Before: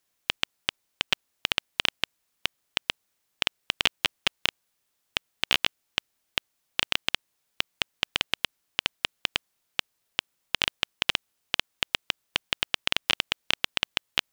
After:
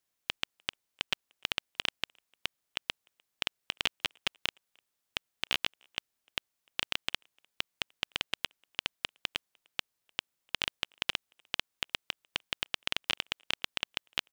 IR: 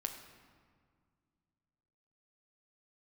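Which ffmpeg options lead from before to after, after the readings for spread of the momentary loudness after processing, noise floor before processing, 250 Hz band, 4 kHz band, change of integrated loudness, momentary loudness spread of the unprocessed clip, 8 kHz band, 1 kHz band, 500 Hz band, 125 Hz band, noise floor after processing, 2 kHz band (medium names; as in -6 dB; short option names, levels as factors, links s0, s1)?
7 LU, -77 dBFS, -7.0 dB, -7.0 dB, -7.0 dB, 7 LU, -7.0 dB, -7.0 dB, -7.0 dB, -7.0 dB, -83 dBFS, -7.0 dB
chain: -filter_complex "[0:a]asplit=2[s0][s1];[s1]adelay=300,highpass=300,lowpass=3400,asoftclip=type=hard:threshold=0.251,volume=0.0355[s2];[s0][s2]amix=inputs=2:normalize=0,volume=0.447"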